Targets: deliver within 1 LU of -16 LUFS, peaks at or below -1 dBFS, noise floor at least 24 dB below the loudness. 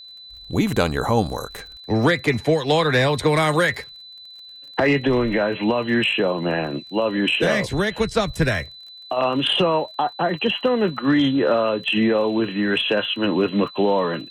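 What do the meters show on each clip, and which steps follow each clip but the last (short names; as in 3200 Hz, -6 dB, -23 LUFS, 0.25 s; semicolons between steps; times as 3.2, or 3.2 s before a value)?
ticks 30/s; steady tone 4000 Hz; tone level -39 dBFS; loudness -20.5 LUFS; peak -5.5 dBFS; loudness target -16.0 LUFS
-> de-click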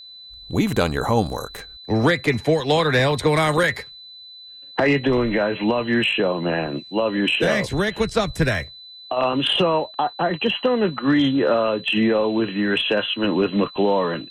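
ticks 0.14/s; steady tone 4000 Hz; tone level -39 dBFS
-> notch 4000 Hz, Q 30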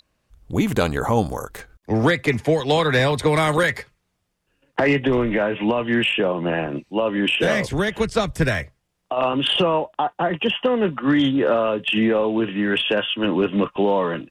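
steady tone none; loudness -20.5 LUFS; peak -6.5 dBFS; loudness target -16.0 LUFS
-> gain +4.5 dB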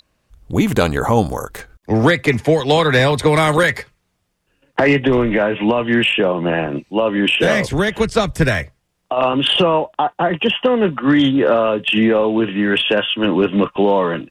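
loudness -16.0 LUFS; peak -2.0 dBFS; noise floor -69 dBFS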